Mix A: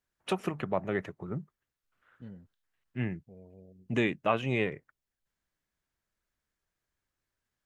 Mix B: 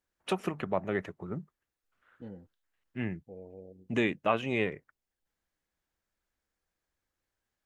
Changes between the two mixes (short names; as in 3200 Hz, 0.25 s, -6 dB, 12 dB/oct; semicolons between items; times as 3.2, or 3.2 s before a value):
second voice: add thirty-one-band EQ 315 Hz +11 dB, 500 Hz +11 dB, 800 Hz +11 dB; master: add bell 130 Hz -8.5 dB 0.25 oct